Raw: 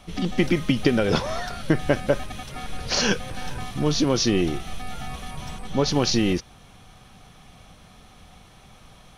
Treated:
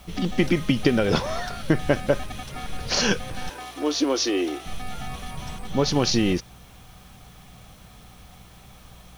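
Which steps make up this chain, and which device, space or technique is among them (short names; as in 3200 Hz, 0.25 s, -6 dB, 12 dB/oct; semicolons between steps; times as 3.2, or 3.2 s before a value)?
3.49–4.66 elliptic high-pass 280 Hz; video cassette with head-switching buzz (buzz 60 Hz, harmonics 3, -52 dBFS; white noise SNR 33 dB)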